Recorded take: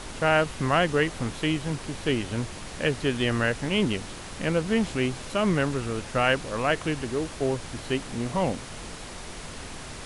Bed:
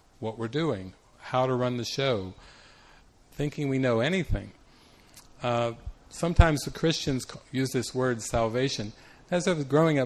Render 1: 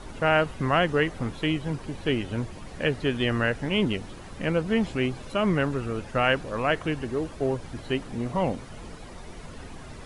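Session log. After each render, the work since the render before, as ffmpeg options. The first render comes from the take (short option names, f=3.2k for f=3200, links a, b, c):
-af "afftdn=nr=11:nf=-40"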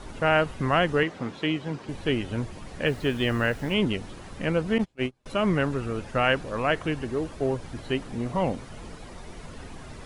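-filter_complex "[0:a]asettb=1/sr,asplit=3[a][b][c];[a]atrim=end=1.034[d];[b]atrim=start=1.03:end=1.89,asetpts=PTS-STARTPTS,afade=t=in:d=0.004:c=qsin,afade=t=out:st=0.856:d=0.004:c=qsin,highpass=160,lowpass=6.4k[e];[c]atrim=start=1.886[f];[d][e]acrossfade=d=0.004:c1=hsin:c2=qsin[g];[g][f]acrossfade=d=0.004:c1=qsin:c2=hsin,asettb=1/sr,asplit=3[h][i][j];[h]atrim=end=2.864[k];[i]atrim=start=2.86:end=3.74,asetpts=PTS-STARTPTS,afade=t=in:d=0.004:c=qsin,afade=t=out:st=0.876:d=0.004:c=qsin,acrusher=bits=7:mix=0:aa=0.5[l];[j]atrim=start=3.736[m];[k][l]acrossfade=d=0.004:c1=hsin:c2=qsin[n];[n][m]acrossfade=d=0.004:c1=qsin:c2=hsin,asettb=1/sr,asplit=3[o][p][q];[o]atrim=end=4.784[r];[p]atrim=start=4.78:end=5.26,asetpts=PTS-STARTPTS,afade=t=in:d=0.004:c=qsin,afade=t=out:st=0.476:d=0.004:c=qsin,agate=range=-33dB:threshold=-25dB:ratio=16:release=100:detection=peak[s];[q]atrim=start=5.256[t];[r][s]acrossfade=d=0.004:c1=hsin:c2=qsin[u];[u][t]acrossfade=d=0.004:c1=qsin:c2=hsin"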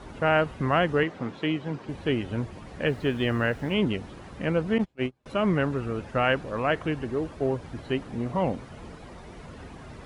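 -af "highpass=43,highshelf=f=3.9k:g=-9"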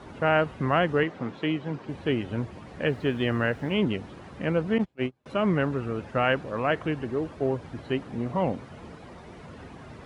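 -af "highpass=72,highshelf=f=5.8k:g=-6.5"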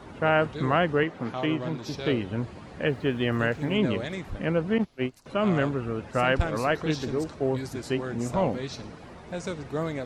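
-filter_complex "[1:a]volume=-8dB[a];[0:a][a]amix=inputs=2:normalize=0"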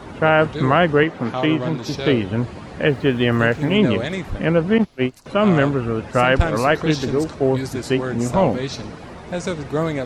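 -af "volume=8.5dB,alimiter=limit=-3dB:level=0:latency=1"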